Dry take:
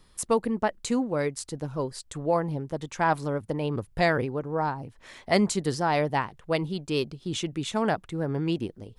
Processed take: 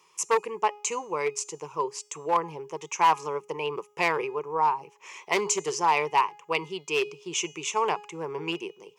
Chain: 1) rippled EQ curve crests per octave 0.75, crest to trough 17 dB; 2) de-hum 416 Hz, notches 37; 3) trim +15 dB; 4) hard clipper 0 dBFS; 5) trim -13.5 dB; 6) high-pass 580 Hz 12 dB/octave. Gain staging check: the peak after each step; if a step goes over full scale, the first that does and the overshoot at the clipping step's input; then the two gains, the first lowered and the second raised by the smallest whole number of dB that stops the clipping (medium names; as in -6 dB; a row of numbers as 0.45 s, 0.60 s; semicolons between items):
-8.0 dBFS, -8.0 dBFS, +7.0 dBFS, 0.0 dBFS, -13.5 dBFS, -9.5 dBFS; step 3, 7.0 dB; step 3 +8 dB, step 5 -6.5 dB